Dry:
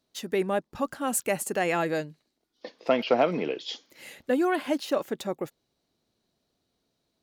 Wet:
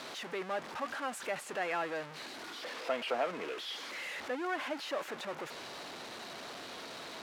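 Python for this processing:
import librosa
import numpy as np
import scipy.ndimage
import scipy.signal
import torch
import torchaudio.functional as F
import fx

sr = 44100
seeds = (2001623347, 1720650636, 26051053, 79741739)

y = x + 0.5 * 10.0 ** (-24.0 / 20.0) * np.sign(x)
y = fx.bandpass_q(y, sr, hz=1400.0, q=0.69)
y = y * 10.0 ** (-8.5 / 20.0)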